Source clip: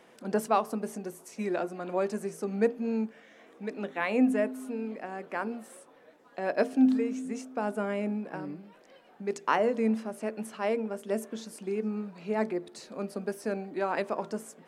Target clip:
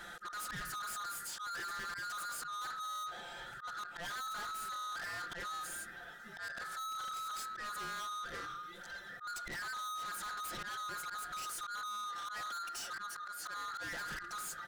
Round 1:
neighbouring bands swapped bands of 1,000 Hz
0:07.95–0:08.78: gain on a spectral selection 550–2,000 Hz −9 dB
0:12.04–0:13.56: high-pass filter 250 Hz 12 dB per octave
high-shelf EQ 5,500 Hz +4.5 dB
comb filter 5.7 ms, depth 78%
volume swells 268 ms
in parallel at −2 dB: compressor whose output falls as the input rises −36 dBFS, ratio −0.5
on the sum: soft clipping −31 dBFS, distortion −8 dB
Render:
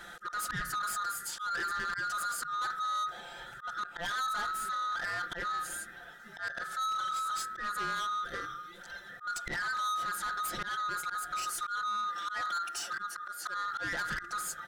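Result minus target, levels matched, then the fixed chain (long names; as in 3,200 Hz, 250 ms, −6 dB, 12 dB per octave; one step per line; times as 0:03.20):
soft clipping: distortion −5 dB
neighbouring bands swapped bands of 1,000 Hz
0:07.95–0:08.78: gain on a spectral selection 550–2,000 Hz −9 dB
0:12.04–0:13.56: high-pass filter 250 Hz 12 dB per octave
high-shelf EQ 5,500 Hz +4.5 dB
comb filter 5.7 ms, depth 78%
volume swells 268 ms
in parallel at −2 dB: compressor whose output falls as the input rises −36 dBFS, ratio −0.5
on the sum: soft clipping −40.5 dBFS, distortion −3 dB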